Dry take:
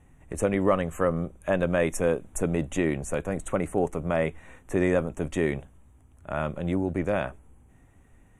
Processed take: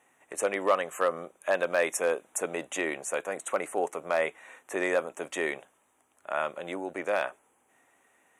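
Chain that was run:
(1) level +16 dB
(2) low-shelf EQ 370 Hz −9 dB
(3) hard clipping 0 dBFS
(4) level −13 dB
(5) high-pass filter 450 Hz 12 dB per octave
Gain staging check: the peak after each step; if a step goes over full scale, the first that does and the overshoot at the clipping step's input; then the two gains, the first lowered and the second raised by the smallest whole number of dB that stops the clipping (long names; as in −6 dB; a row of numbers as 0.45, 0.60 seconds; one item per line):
+7.0, +4.5, 0.0, −13.0, −11.5 dBFS
step 1, 4.5 dB
step 1 +11 dB, step 4 −8 dB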